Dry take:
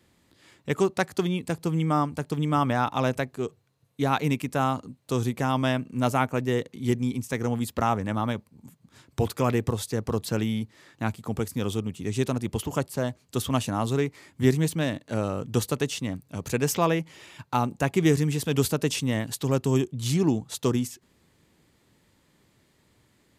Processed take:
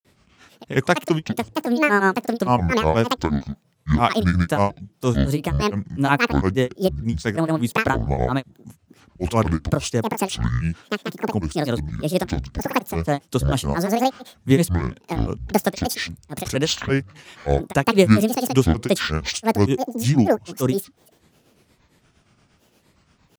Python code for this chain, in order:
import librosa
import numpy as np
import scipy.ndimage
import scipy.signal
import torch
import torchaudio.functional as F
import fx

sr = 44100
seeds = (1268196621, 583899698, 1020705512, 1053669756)

y = fx.granulator(x, sr, seeds[0], grain_ms=185.0, per_s=8.6, spray_ms=100.0, spread_st=12)
y = F.gain(torch.from_numpy(y), 7.5).numpy()